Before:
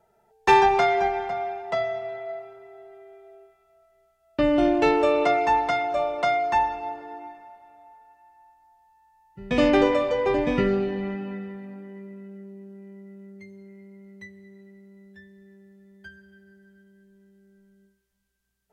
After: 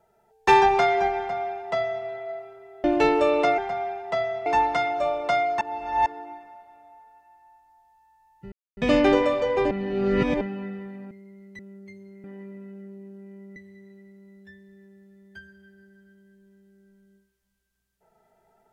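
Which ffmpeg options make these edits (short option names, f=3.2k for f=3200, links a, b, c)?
-filter_complex "[0:a]asplit=13[a][b][c][d][e][f][g][h][i][j][k][l][m];[a]atrim=end=2.842[n];[b]atrim=start=4.658:end=5.402[o];[c]atrim=start=1.178:end=2.062[p];[d]atrim=start=5.398:end=6.552[q];[e]atrim=start=6.548:end=7.002,asetpts=PTS-STARTPTS,areverse[r];[f]atrim=start=6.998:end=9.46,asetpts=PTS-STARTPTS,afade=t=out:st=2.458:d=0.004:c=hsin,apad=pad_dur=0.25[s];[g]atrim=start=9.46:end=10.402,asetpts=PTS-STARTPTS,afade=t=in:d=0.004:c=hsin[t];[h]atrim=start=10.398:end=11.102,asetpts=PTS-STARTPTS,areverse[u];[i]atrim=start=11.098:end=11.802[v];[j]atrim=start=13.768:end=14.252[w];[k]atrim=start=13.118:end=13.772[x];[l]atrim=start=11.798:end=13.122[y];[m]atrim=start=14.248[z];[n][o]acrossfade=d=0.004:c1=hsin:c2=hsin[aa];[aa][p]acrossfade=d=0.004:c1=hsin:c2=hsin[ab];[ab][q]acrossfade=d=0.004:c1=hsin:c2=hsin[ac];[ac][r]acrossfade=d=0.004:c1=hsin:c2=hsin[ad];[s][t]concat=n=2:v=0:a=1[ae];[ad][ae]acrossfade=d=0.004:c1=hsin:c2=hsin[af];[af][u]acrossfade=d=0.004:c1=hsin:c2=hsin[ag];[ag][v]acrossfade=d=0.004:c1=hsin:c2=hsin[ah];[ah][w]acrossfade=d=0.004:c1=hsin:c2=hsin[ai];[ai][x]acrossfade=d=0.004:c1=hsin:c2=hsin[aj];[aj][y]acrossfade=d=0.004:c1=hsin:c2=hsin[ak];[ak][z]acrossfade=d=0.004:c1=hsin:c2=hsin"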